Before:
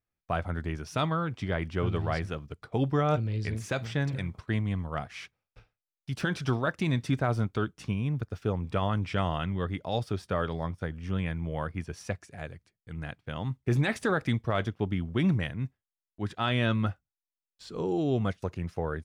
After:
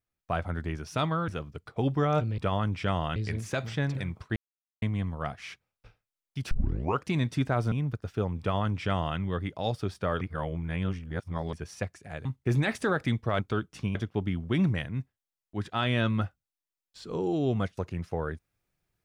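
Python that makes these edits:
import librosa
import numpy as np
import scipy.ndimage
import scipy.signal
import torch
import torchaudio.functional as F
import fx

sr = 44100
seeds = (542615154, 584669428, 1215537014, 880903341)

y = fx.edit(x, sr, fx.cut(start_s=1.28, length_s=0.96),
    fx.insert_silence(at_s=4.54, length_s=0.46),
    fx.tape_start(start_s=6.23, length_s=0.56),
    fx.move(start_s=7.44, length_s=0.56, to_s=14.6),
    fx.duplicate(start_s=8.68, length_s=0.78, to_s=3.34),
    fx.reverse_span(start_s=10.49, length_s=1.32),
    fx.cut(start_s=12.53, length_s=0.93), tone=tone)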